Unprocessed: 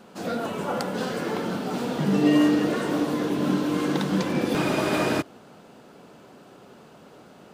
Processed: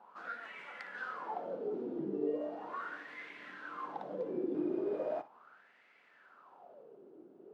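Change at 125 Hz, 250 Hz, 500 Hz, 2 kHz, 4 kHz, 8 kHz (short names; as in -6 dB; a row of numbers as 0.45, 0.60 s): -26.5 dB, -18.5 dB, -11.0 dB, -12.5 dB, -25.5 dB, under -35 dB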